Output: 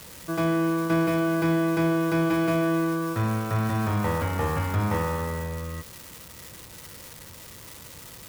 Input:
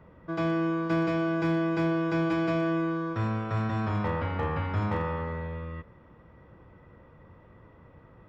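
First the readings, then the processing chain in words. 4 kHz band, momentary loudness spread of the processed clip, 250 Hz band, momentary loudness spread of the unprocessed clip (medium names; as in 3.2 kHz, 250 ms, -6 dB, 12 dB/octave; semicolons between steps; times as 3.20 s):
+6.0 dB, 18 LU, +3.5 dB, 8 LU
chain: zero-crossing glitches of -32 dBFS; trim +3.5 dB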